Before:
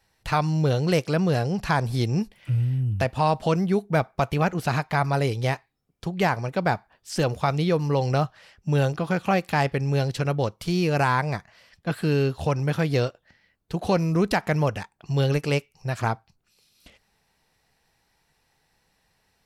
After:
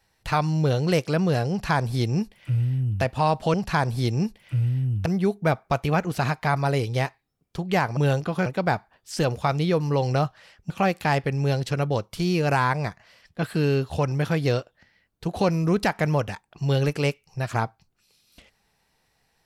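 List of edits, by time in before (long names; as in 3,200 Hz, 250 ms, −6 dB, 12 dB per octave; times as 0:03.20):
0:01.50–0:03.02: duplicate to 0:03.54
0:08.69–0:09.18: move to 0:06.45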